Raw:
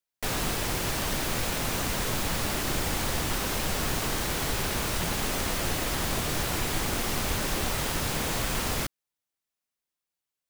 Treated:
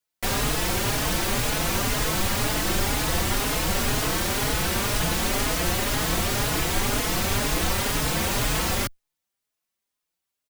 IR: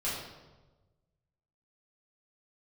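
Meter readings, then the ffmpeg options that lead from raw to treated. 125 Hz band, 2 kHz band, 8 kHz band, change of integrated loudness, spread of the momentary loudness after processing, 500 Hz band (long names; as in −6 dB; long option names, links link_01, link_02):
+4.5 dB, +4.5 dB, +4.5 dB, +4.5 dB, 0 LU, +4.5 dB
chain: -filter_complex "[0:a]asplit=2[link_01][link_02];[link_02]adelay=4.3,afreqshift=2[link_03];[link_01][link_03]amix=inputs=2:normalize=1,volume=7.5dB"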